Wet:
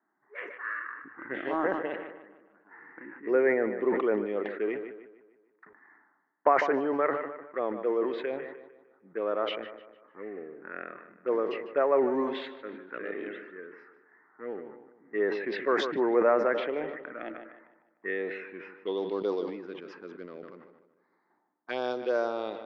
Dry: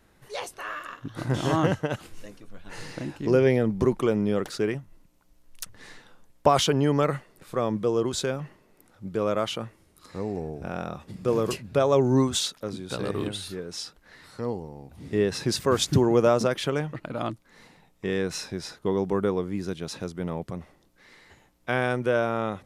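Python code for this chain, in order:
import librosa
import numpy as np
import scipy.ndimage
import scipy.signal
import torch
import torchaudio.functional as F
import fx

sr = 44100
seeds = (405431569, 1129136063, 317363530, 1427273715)

p1 = scipy.signal.sosfilt(scipy.signal.butter(4, 310.0, 'highpass', fs=sr, output='sos'), x)
p2 = fx.env_lowpass(p1, sr, base_hz=740.0, full_db=-22.5)
p3 = scipy.signal.sosfilt(scipy.signal.butter(6, 7000.0, 'lowpass', fs=sr, output='sos'), p2)
p4 = fx.high_shelf(p3, sr, hz=2600.0, db=-7.0)
p5 = fx.env_phaser(p4, sr, low_hz=500.0, high_hz=3400.0, full_db=-19.5)
p6 = np.sign(p5) * np.maximum(np.abs(p5) - 10.0 ** (-39.0 / 20.0), 0.0)
p7 = p5 + (p6 * librosa.db_to_amplitude(-9.5))
p8 = fx.filter_sweep_lowpass(p7, sr, from_hz=1900.0, to_hz=4600.0, start_s=18.25, end_s=19.26, q=4.7)
p9 = p8 + fx.echo_filtered(p8, sr, ms=151, feedback_pct=51, hz=4400.0, wet_db=-14.0, dry=0)
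p10 = fx.sustainer(p9, sr, db_per_s=56.0)
y = p10 * librosa.db_to_amplitude(-5.5)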